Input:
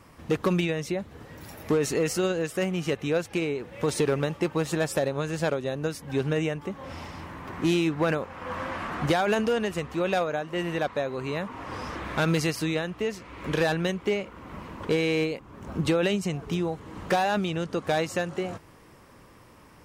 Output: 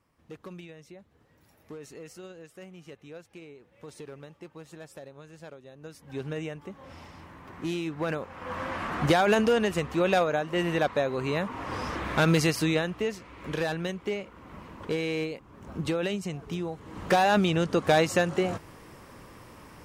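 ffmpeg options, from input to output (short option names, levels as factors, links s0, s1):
-af "volume=3.55,afade=t=in:st=5.75:d=0.49:silence=0.281838,afade=t=in:st=7.85:d=1.36:silence=0.316228,afade=t=out:st=12.77:d=0.59:silence=0.446684,afade=t=in:st=16.74:d=0.66:silence=0.354813"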